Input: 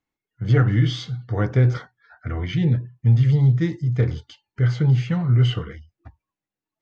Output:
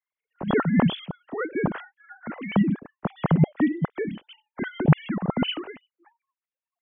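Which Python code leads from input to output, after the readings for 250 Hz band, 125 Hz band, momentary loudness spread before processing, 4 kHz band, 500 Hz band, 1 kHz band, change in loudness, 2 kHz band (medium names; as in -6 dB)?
+1.5 dB, -9.5 dB, 14 LU, -0.5 dB, +0.5 dB, +5.0 dB, -5.0 dB, +0.5 dB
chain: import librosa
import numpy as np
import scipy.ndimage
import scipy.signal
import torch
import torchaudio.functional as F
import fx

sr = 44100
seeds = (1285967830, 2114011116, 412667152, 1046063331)

y = fx.sine_speech(x, sr)
y = y * librosa.db_to_amplitude(-5.5)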